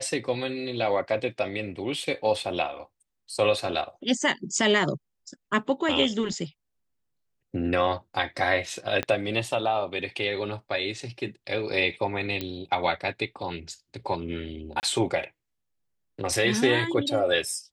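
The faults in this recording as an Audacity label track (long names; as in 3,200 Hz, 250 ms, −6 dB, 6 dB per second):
9.030000	9.030000	click −13 dBFS
12.410000	12.410000	click −16 dBFS
14.800000	14.830000	drop-out 29 ms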